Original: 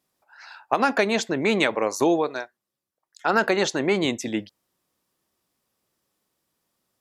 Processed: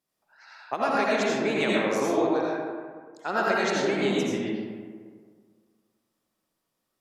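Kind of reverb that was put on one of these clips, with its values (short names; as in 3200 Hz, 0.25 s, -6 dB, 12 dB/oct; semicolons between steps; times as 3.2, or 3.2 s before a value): digital reverb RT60 1.8 s, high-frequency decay 0.45×, pre-delay 45 ms, DRR -5.5 dB; gain -9 dB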